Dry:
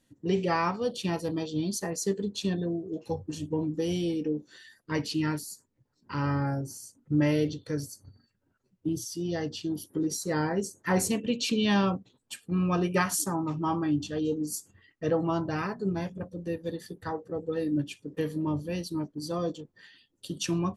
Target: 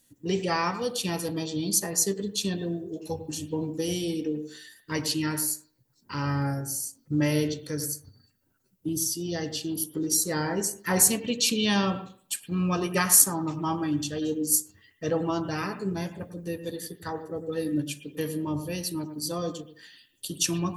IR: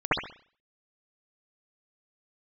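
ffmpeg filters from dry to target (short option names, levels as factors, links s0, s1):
-filter_complex "[0:a]aemphasis=mode=production:type=75fm,asplit=2[s0][s1];[1:a]atrim=start_sample=2205,adelay=31[s2];[s1][s2]afir=irnorm=-1:irlink=0,volume=0.0447[s3];[s0][s3]amix=inputs=2:normalize=0"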